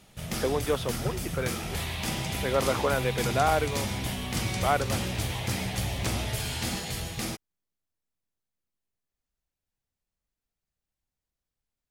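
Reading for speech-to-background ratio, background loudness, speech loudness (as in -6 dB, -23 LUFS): 2.0 dB, -31.5 LUFS, -29.5 LUFS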